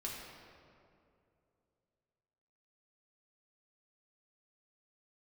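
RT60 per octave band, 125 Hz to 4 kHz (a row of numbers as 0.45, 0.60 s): 3.2, 2.9, 2.9, 2.3, 1.8, 1.4 s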